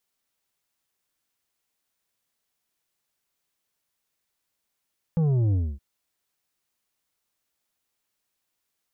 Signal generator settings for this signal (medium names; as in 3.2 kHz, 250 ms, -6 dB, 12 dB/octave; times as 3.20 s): sub drop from 170 Hz, over 0.62 s, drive 7.5 dB, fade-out 0.26 s, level -20 dB